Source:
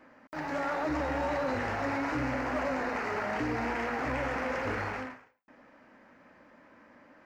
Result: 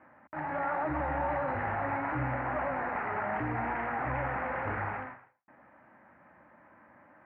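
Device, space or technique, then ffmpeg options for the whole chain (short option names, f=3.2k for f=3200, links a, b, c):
bass cabinet: -af "highpass=63,equalizer=f=77:t=q:w=4:g=5,equalizer=f=130:t=q:w=4:g=5,equalizer=f=260:t=q:w=4:g=-7,equalizer=f=460:t=q:w=4:g=-8,equalizer=f=820:t=q:w=4:g=4,lowpass=f=2.1k:w=0.5412,lowpass=f=2.1k:w=1.3066"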